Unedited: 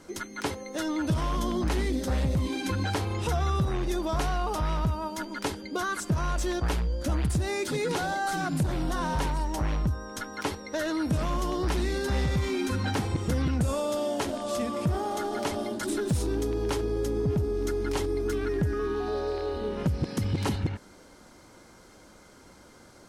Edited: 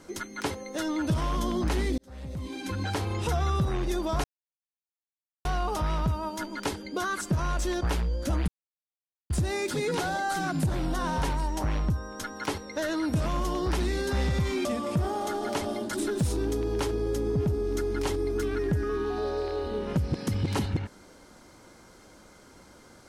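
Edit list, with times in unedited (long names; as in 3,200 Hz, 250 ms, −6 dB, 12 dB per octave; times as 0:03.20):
0:01.98–0:03.10: fade in
0:04.24: splice in silence 1.21 s
0:07.27: splice in silence 0.82 s
0:12.62–0:14.55: remove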